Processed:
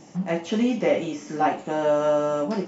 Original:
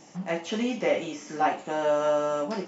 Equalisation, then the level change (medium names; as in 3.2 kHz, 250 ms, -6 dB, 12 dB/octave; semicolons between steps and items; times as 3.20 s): bass shelf 450 Hz +8.5 dB; 0.0 dB